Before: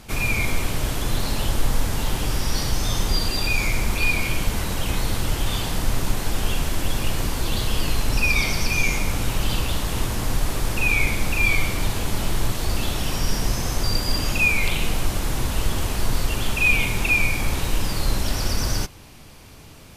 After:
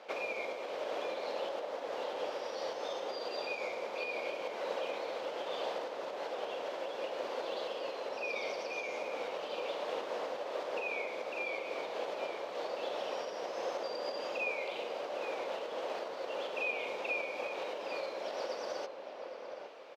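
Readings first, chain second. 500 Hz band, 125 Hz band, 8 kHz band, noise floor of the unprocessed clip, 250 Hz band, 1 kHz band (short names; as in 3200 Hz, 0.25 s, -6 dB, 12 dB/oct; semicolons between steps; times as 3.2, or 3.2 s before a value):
-2.0 dB, under -40 dB, -27.5 dB, -43 dBFS, -21.0 dB, -8.0 dB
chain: dynamic EQ 1700 Hz, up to -7 dB, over -36 dBFS, Q 0.79; compressor, threshold -22 dBFS, peak gain reduction 9.5 dB; ladder high-pass 480 Hz, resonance 65%; air absorption 230 m; outdoor echo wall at 140 m, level -6 dB; gain +6.5 dB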